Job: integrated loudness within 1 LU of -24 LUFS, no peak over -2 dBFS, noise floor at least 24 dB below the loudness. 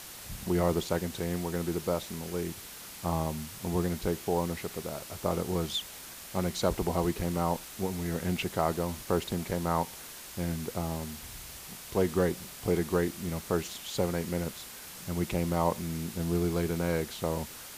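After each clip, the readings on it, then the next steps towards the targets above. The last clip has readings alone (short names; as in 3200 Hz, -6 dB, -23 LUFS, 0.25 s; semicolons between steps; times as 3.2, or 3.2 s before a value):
noise floor -46 dBFS; noise floor target -56 dBFS; loudness -32.0 LUFS; peak -12.0 dBFS; loudness target -24.0 LUFS
-> noise print and reduce 10 dB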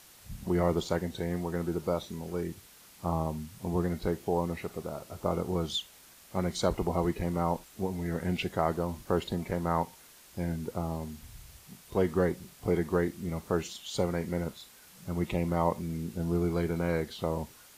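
noise floor -55 dBFS; noise floor target -56 dBFS
-> noise print and reduce 6 dB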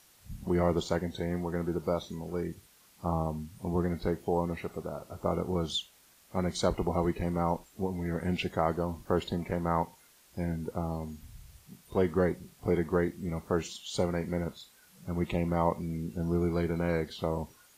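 noise floor -61 dBFS; loudness -32.5 LUFS; peak -12.0 dBFS; loudness target -24.0 LUFS
-> gain +8.5 dB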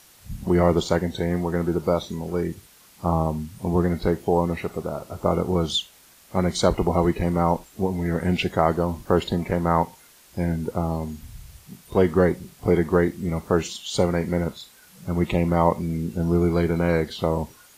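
loudness -24.0 LUFS; peak -3.5 dBFS; noise floor -53 dBFS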